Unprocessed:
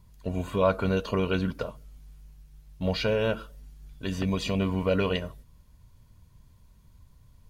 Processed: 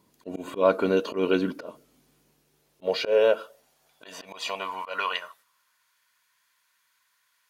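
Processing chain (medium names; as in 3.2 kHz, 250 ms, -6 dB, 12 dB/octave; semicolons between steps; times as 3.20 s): high-pass sweep 310 Hz -> 1.6 kHz, 2.18–5.98 s; slow attack 118 ms; trim +1.5 dB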